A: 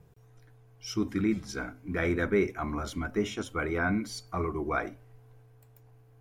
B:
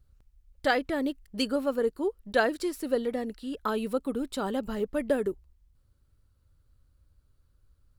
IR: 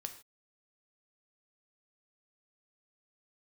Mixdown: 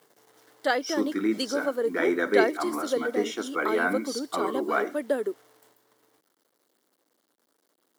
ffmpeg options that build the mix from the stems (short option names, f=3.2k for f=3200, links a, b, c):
-filter_complex "[0:a]acrusher=bits=9:mix=0:aa=0.000001,volume=1dB,asplit=2[a][b];[b]volume=-3.5dB[c];[1:a]acrusher=bits=10:mix=0:aa=0.000001,volume=0.5dB,asplit=2[d][e];[e]apad=whole_len=273617[f];[a][f]sidechaingate=range=-33dB:threshold=-59dB:ratio=16:detection=peak[g];[2:a]atrim=start_sample=2205[h];[c][h]afir=irnorm=-1:irlink=0[i];[g][d][i]amix=inputs=3:normalize=0,highpass=f=270:w=0.5412,highpass=f=270:w=1.3066,equalizer=f=2.5k:w=7.5:g=-9.5"